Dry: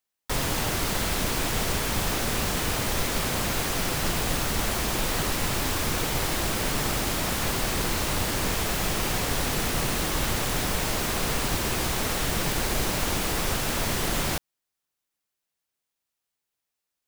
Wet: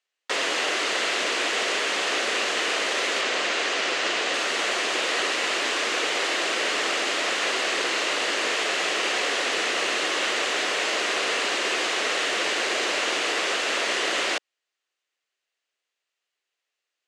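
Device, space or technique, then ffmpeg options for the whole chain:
phone speaker on a table: -filter_complex "[0:a]highpass=f=370:w=0.5412,highpass=f=370:w=1.3066,equalizer=f=880:t=q:w=4:g=-6,equalizer=f=1900:t=q:w=4:g=4,equalizer=f=2800:t=q:w=4:g=5,equalizer=f=5500:t=q:w=4:g=-4,lowpass=f=6900:w=0.5412,lowpass=f=6900:w=1.3066,asettb=1/sr,asplit=3[s0][s1][s2];[s0]atrim=end=3.214[s3];[s1]atrim=start=3.21:end=4.34,asetpts=PTS-STARTPTS,afade=t=in:d=0.004:c=qsin,afade=t=out:st=1.126:d=0.004:c=qsin,lowpass=8000[s4];[s2]atrim=start=4.336[s5];[s3][s4]acrossfade=d=0.004:c1=hsin:c2=qsin[s6];[s6][s5]acrossfade=d=0.004:c1=qsin:c2=hsin,volume=1.68"

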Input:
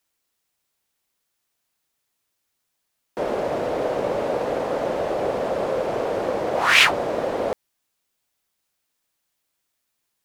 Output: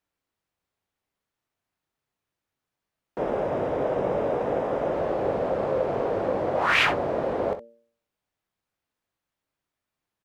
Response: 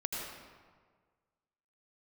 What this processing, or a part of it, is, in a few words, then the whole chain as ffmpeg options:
through cloth: -filter_complex "[0:a]bandreject=f=116.4:t=h:w=4,bandreject=f=232.8:t=h:w=4,bandreject=f=349.2:t=h:w=4,bandreject=f=465.6:t=h:w=4,bandreject=f=582:t=h:w=4,asettb=1/sr,asplit=3[s0][s1][s2];[s0]atrim=end=3.184[s3];[s1]atrim=start=3.18:end=4.94,asetpts=PTS-STARTPTS,afade=t=in:d=0.004:c=qsin,afade=t=out:st=1.756:d=0.004:c=qsin,bandreject=f=4300:w=6.2[s4];[s2]atrim=start=4.936[s5];[s3][s4]acrossfade=d=0.004:c1=hsin:c2=qsin[s6];[s6][s5]acrossfade=d=0.004:c1=qsin:c2=hsin,equalizer=f=99:w=0.77:g=4,highshelf=f=3400:g=-15.5,aecho=1:1:21|64:0.299|0.251,volume=0.794"

